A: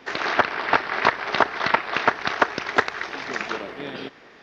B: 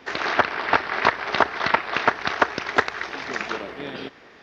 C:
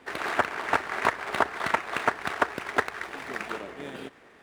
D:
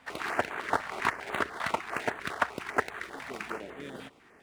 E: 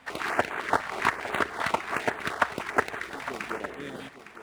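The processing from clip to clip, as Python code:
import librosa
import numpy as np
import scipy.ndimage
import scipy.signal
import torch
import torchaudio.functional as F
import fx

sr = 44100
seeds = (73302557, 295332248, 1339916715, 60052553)

y1 = fx.peak_eq(x, sr, hz=75.0, db=7.5, octaves=0.39)
y2 = scipy.ndimage.median_filter(y1, 9, mode='constant')
y2 = y2 * 10.0 ** (-5.0 / 20.0)
y3 = fx.filter_held_notch(y2, sr, hz=10.0, low_hz=380.0, high_hz=5200.0)
y3 = y3 * 10.0 ** (-2.0 / 20.0)
y4 = y3 + 10.0 ** (-13.0 / 20.0) * np.pad(y3, (int(858 * sr / 1000.0), 0))[:len(y3)]
y4 = y4 * 10.0 ** (3.5 / 20.0)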